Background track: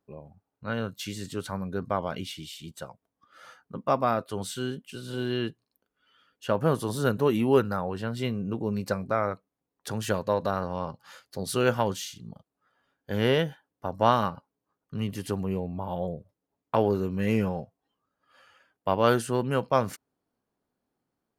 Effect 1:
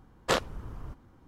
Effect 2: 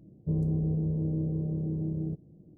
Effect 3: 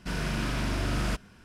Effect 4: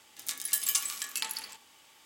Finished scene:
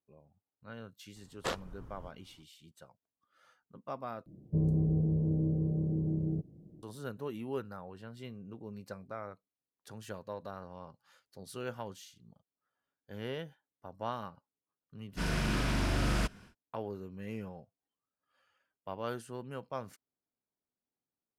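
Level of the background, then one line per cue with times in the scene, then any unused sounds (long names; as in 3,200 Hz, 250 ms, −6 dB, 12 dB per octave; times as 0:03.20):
background track −16 dB
0:01.16: mix in 1 −9 dB
0:04.26: overwrite with 2 −0.5 dB
0:15.11: mix in 3 −1.5 dB, fades 0.10 s
not used: 4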